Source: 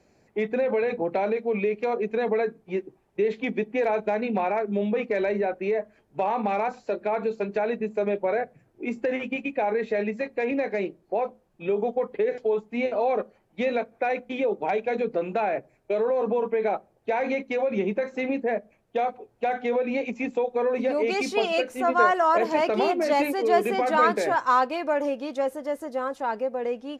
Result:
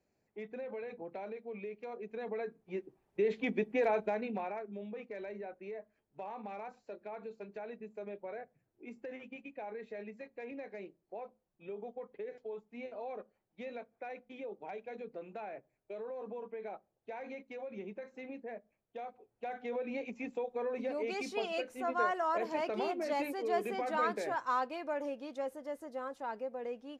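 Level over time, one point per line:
0:01.93 −18 dB
0:03.35 −6 dB
0:03.92 −6 dB
0:04.79 −18.5 dB
0:19.03 −18.5 dB
0:19.86 −12 dB

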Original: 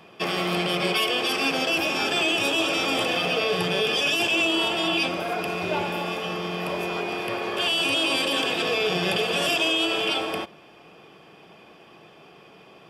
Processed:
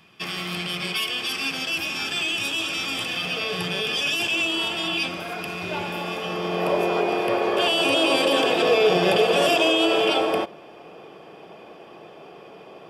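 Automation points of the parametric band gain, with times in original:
parametric band 540 Hz 2 octaves
0:03.11 −13 dB
0:03.51 −6.5 dB
0:05.59 −6.5 dB
0:06.30 +1.5 dB
0:06.62 +9 dB

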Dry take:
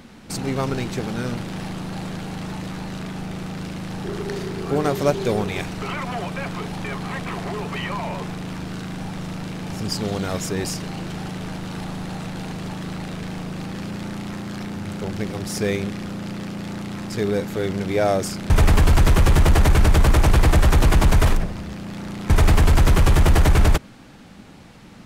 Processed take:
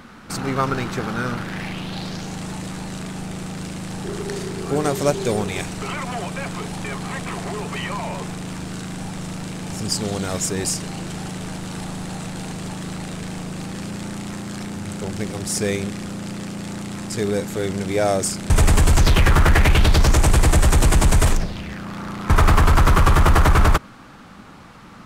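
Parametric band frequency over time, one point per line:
parametric band +10.5 dB 0.82 octaves
0:01.36 1,300 Hz
0:02.41 8,200 Hz
0:18.95 8,200 Hz
0:19.36 1,200 Hz
0:20.23 8,200 Hz
0:21.30 8,200 Hz
0:21.86 1,200 Hz

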